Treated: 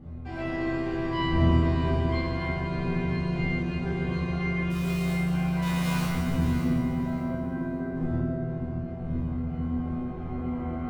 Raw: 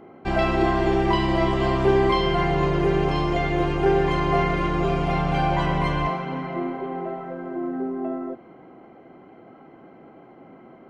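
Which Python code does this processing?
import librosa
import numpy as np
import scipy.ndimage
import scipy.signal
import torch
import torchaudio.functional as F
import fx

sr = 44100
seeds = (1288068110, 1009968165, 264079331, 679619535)

y = fx.clip_1bit(x, sr, at=(5.62, 6.05))
y = fx.recorder_agc(y, sr, target_db=-14.0, rise_db_per_s=5.6, max_gain_db=30)
y = fx.dmg_wind(y, sr, seeds[0], corner_hz=190.0, level_db=-27.0)
y = fx.low_shelf(y, sr, hz=240.0, db=3.5)
y = fx.quant_companded(y, sr, bits=4, at=(4.7, 5.11))
y = fx.resonator_bank(y, sr, root=40, chord='fifth', decay_s=0.59)
y = fx.echo_feedback(y, sr, ms=584, feedback_pct=23, wet_db=-10)
y = fx.rev_fdn(y, sr, rt60_s=2.5, lf_ratio=1.5, hf_ratio=0.85, size_ms=38.0, drr_db=-3.0)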